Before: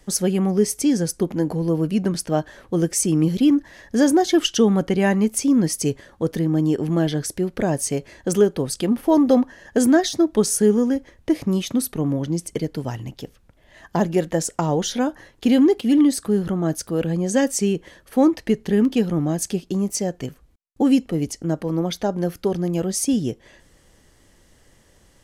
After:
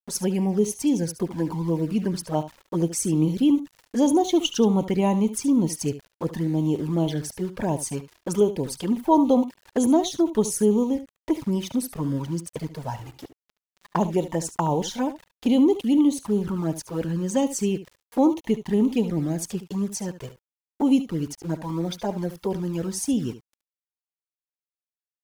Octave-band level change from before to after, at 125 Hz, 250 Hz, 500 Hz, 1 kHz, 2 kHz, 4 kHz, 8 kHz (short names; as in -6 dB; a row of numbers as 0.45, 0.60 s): -3.5, -3.5, -4.0, -0.5, -9.5, -4.5, -6.0 dB